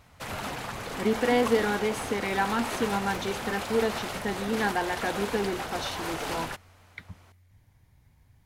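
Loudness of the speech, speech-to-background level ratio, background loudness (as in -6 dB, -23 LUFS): -29.5 LUFS, 4.5 dB, -34.0 LUFS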